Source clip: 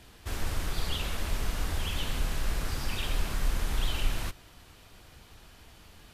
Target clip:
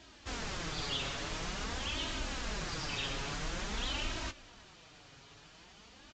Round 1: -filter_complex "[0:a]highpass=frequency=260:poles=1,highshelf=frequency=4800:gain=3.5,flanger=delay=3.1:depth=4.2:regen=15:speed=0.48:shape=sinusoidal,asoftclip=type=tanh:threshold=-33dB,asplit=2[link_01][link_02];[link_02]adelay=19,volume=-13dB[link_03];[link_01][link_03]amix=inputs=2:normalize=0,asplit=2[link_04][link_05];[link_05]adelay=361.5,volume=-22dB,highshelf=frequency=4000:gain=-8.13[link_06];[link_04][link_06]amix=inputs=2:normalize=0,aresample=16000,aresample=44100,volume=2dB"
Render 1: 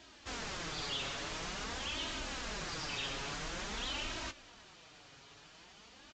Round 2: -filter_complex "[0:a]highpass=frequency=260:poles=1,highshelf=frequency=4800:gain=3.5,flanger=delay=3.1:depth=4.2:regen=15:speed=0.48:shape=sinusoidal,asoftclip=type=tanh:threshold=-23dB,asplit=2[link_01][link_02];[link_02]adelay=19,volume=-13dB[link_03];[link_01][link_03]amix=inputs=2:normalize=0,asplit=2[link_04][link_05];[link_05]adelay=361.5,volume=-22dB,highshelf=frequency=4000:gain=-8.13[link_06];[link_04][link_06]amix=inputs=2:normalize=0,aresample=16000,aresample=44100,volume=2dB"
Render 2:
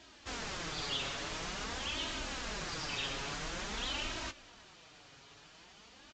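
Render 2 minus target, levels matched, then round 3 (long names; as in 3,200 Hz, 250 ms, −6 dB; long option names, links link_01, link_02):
125 Hz band −4.0 dB
-filter_complex "[0:a]highpass=frequency=120:poles=1,highshelf=frequency=4800:gain=3.5,flanger=delay=3.1:depth=4.2:regen=15:speed=0.48:shape=sinusoidal,asoftclip=type=tanh:threshold=-23dB,asplit=2[link_01][link_02];[link_02]adelay=19,volume=-13dB[link_03];[link_01][link_03]amix=inputs=2:normalize=0,asplit=2[link_04][link_05];[link_05]adelay=361.5,volume=-22dB,highshelf=frequency=4000:gain=-8.13[link_06];[link_04][link_06]amix=inputs=2:normalize=0,aresample=16000,aresample=44100,volume=2dB"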